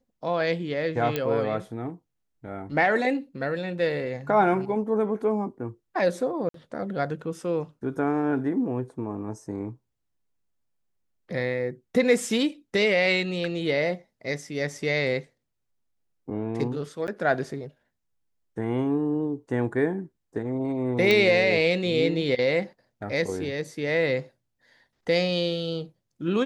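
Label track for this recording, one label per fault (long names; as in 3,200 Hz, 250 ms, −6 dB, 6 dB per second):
1.160000	1.160000	click −12 dBFS
6.490000	6.540000	drop-out 53 ms
17.070000	17.080000	drop-out 9.9 ms
21.110000	21.110000	click −9 dBFS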